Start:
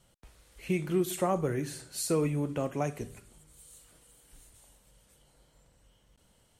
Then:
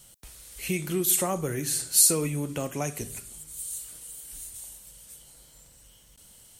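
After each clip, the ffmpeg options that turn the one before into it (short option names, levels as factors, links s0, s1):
-filter_complex "[0:a]lowshelf=f=420:g=4.5,asplit=2[s0][s1];[s1]acompressor=threshold=0.02:ratio=6,volume=1.12[s2];[s0][s2]amix=inputs=2:normalize=0,crystalizer=i=6.5:c=0,volume=0.501"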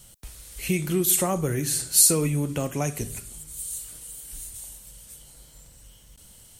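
-af "lowshelf=f=160:g=7,volume=1.26"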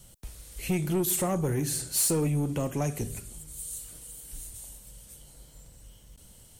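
-filter_complex "[0:a]acrossover=split=810|1700[s0][s1][s2];[s0]acontrast=27[s3];[s3][s1][s2]amix=inputs=3:normalize=0,asoftclip=type=tanh:threshold=0.15,volume=0.596"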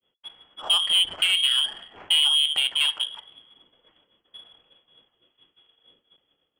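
-af "lowpass=f=2900:t=q:w=0.5098,lowpass=f=2900:t=q:w=0.6013,lowpass=f=2900:t=q:w=0.9,lowpass=f=2900:t=q:w=2.563,afreqshift=-3400,agate=range=0.0224:threshold=0.00501:ratio=3:detection=peak,adynamicsmooth=sensitivity=3.5:basefreq=1500,volume=2.24"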